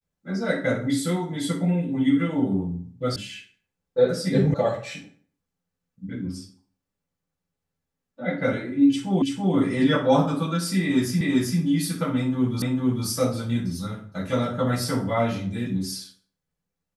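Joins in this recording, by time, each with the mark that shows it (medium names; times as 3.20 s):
3.16 s: sound stops dead
4.54 s: sound stops dead
9.22 s: repeat of the last 0.33 s
11.21 s: repeat of the last 0.39 s
12.62 s: repeat of the last 0.45 s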